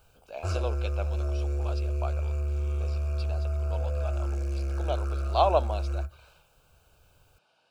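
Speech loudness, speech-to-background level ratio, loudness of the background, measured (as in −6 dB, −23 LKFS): −33.0 LKFS, −2.0 dB, −31.0 LKFS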